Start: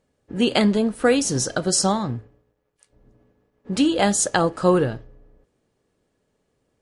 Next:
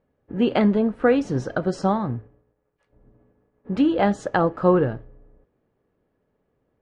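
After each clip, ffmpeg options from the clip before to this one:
-af "lowpass=1.8k"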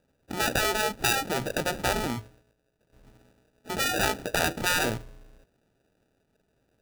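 -af "acrusher=samples=41:mix=1:aa=0.000001,afftfilt=real='re*lt(hypot(re,im),0.398)':imag='im*lt(hypot(re,im),0.398)':win_size=1024:overlap=0.75"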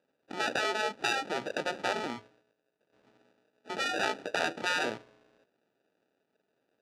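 -af "highpass=280,lowpass=4.6k,volume=-3.5dB"

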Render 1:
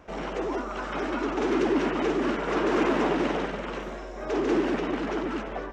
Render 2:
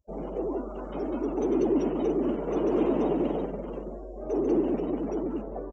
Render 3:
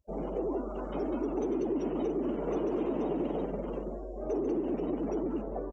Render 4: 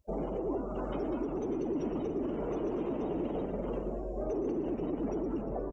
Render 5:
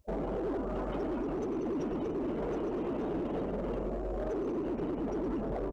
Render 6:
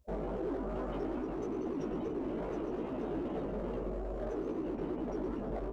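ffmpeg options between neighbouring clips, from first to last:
-af "afftdn=nr=35:nf=-37,firequalizer=gain_entry='entry(510,0);entry(1600,-19);entry(4000,0);entry(6900,15)':delay=0.05:min_phase=1"
-af "acompressor=threshold=-28dB:ratio=6"
-filter_complex "[0:a]alimiter=level_in=6.5dB:limit=-24dB:level=0:latency=1:release=450,volume=-6.5dB,asplit=8[a][b][c][d][e][f][g][h];[b]adelay=117,afreqshift=-84,volume=-12.5dB[i];[c]adelay=234,afreqshift=-168,volume=-17.1dB[j];[d]adelay=351,afreqshift=-252,volume=-21.7dB[k];[e]adelay=468,afreqshift=-336,volume=-26.2dB[l];[f]adelay=585,afreqshift=-420,volume=-30.8dB[m];[g]adelay=702,afreqshift=-504,volume=-35.4dB[n];[h]adelay=819,afreqshift=-588,volume=-40dB[o];[a][i][j][k][l][m][n][o]amix=inputs=8:normalize=0,volume=4.5dB"
-af "alimiter=level_in=6.5dB:limit=-24dB:level=0:latency=1:release=75,volume=-6.5dB,asoftclip=type=hard:threshold=-35dB,volume=5dB"
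-af "flanger=delay=15.5:depth=3.9:speed=2.4"

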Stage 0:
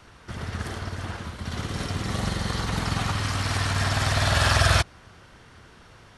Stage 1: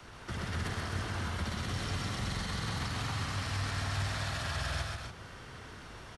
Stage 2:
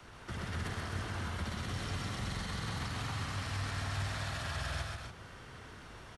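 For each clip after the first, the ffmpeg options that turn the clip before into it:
-filter_complex "[0:a]acrossover=split=89|180|970|7200[a][b][c][d][e];[a]acompressor=threshold=-37dB:ratio=4[f];[b]acompressor=threshold=-36dB:ratio=4[g];[c]acompressor=threshold=-41dB:ratio=4[h];[d]acompressor=threshold=-35dB:ratio=4[i];[e]acompressor=threshold=-52dB:ratio=4[j];[f][g][h][i][j]amix=inputs=5:normalize=0,alimiter=level_in=5dB:limit=-24dB:level=0:latency=1:release=83,volume=-5dB,aecho=1:1:131.2|256.6|288.6:0.708|0.447|0.316"
-af "equalizer=f=5k:t=o:w=0.77:g=-2,volume=-2.5dB"

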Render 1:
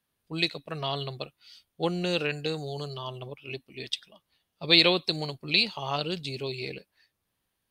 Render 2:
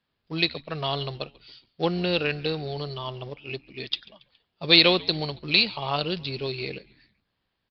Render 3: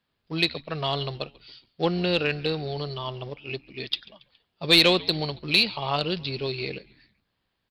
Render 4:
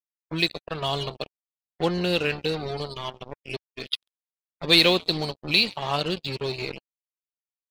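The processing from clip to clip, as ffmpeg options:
-filter_complex "[0:a]aresample=11025,acrusher=bits=5:mode=log:mix=0:aa=0.000001,aresample=44100,asplit=4[a][b][c][d];[b]adelay=139,afreqshift=-86,volume=-23.5dB[e];[c]adelay=278,afreqshift=-172,volume=-29.3dB[f];[d]adelay=417,afreqshift=-258,volume=-35.2dB[g];[a][e][f][g]amix=inputs=4:normalize=0,volume=3dB"
-af "acontrast=50,volume=-5dB"
-af "acrusher=bits=4:mix=0:aa=0.5,afftdn=nr=19:nf=-41"

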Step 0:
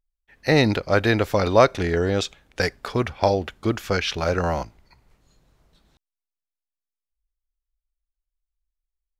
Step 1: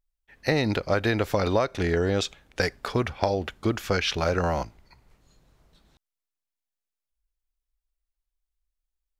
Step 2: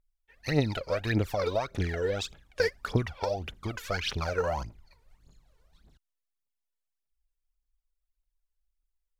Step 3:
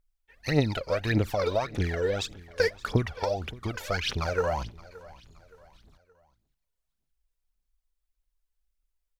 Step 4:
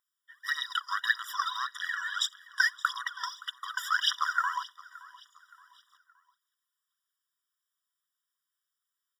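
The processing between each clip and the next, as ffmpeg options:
-af "acompressor=threshold=-19dB:ratio=12"
-af "aphaser=in_gain=1:out_gain=1:delay=2.3:decay=0.78:speed=1.7:type=triangular,volume=-9dB"
-af "aecho=1:1:571|1142|1713:0.0944|0.0378|0.0151,volume=2dB"
-af "afftfilt=real='re*eq(mod(floor(b*sr/1024/970),2),1)':imag='im*eq(mod(floor(b*sr/1024/970),2),1)':win_size=1024:overlap=0.75,volume=6.5dB"

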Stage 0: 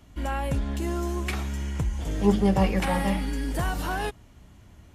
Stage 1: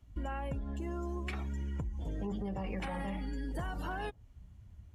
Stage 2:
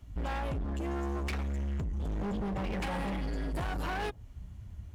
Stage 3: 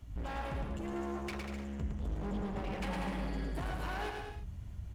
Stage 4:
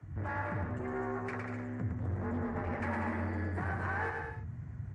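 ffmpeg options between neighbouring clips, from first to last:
-af "afftdn=nr=16:nf=-39,alimiter=limit=-19dB:level=0:latency=1:release=25,acompressor=threshold=-35dB:ratio=6"
-af "asoftclip=type=hard:threshold=-40dB,volume=8.5dB"
-af "acompressor=threshold=-38dB:ratio=6,aecho=1:1:110|192.5|254.4|300.8|335.6:0.631|0.398|0.251|0.158|0.1"
-af "afreqshift=39,highshelf=f=2.4k:t=q:w=3:g=-10,volume=1.5dB" -ar 22050 -c:a libmp3lame -b:a 40k

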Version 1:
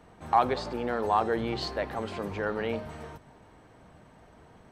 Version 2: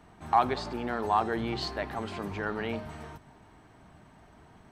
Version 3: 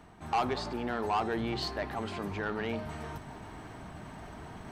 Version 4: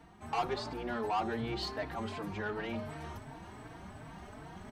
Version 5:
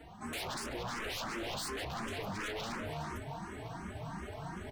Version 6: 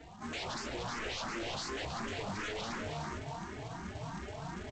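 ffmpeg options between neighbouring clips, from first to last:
-af "equalizer=f=510:w=4.9:g=-10.5"
-af "areverse,acompressor=mode=upward:threshold=-34dB:ratio=2.5,areverse,asoftclip=type=tanh:threshold=-23.5dB"
-filter_complex "[0:a]asplit=2[a][b];[b]adelay=4,afreqshift=2.7[c];[a][c]amix=inputs=2:normalize=1"
-filter_complex "[0:a]aeval=exprs='0.0106*(abs(mod(val(0)/0.0106+3,4)-2)-1)':c=same,asplit=2[a][b];[b]afreqshift=2.8[c];[a][c]amix=inputs=2:normalize=1,volume=8dB"
-af "aresample=16000,acrusher=bits=3:mode=log:mix=0:aa=0.000001,aresample=44100,aecho=1:1:309:0.251"

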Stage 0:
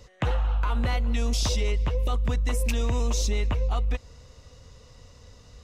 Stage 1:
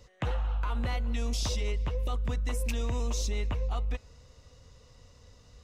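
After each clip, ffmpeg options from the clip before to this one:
-af "bandreject=f=212.3:t=h:w=4,bandreject=f=424.6:t=h:w=4,bandreject=f=636.9:t=h:w=4,bandreject=f=849.2:t=h:w=4,bandreject=f=1.0615k:t=h:w=4,bandreject=f=1.2738k:t=h:w=4,bandreject=f=1.4861k:t=h:w=4,bandreject=f=1.6984k:t=h:w=4,bandreject=f=1.9107k:t=h:w=4,bandreject=f=2.123k:t=h:w=4,bandreject=f=2.3353k:t=h:w=4,bandreject=f=2.5476k:t=h:w=4,volume=-5.5dB"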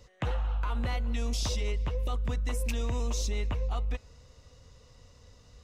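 -af anull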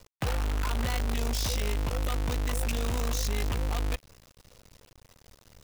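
-af "acrusher=bits=6:dc=4:mix=0:aa=0.000001"

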